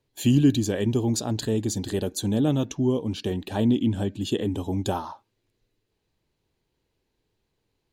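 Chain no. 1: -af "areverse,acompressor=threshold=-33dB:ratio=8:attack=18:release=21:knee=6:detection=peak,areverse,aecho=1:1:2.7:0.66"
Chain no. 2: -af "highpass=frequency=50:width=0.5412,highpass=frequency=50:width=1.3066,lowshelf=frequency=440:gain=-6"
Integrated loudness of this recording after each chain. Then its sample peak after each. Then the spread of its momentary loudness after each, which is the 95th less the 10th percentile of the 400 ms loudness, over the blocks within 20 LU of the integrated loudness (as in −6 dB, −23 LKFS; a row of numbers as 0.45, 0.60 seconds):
−31.5, −29.0 LKFS; −17.5, −13.0 dBFS; 2, 8 LU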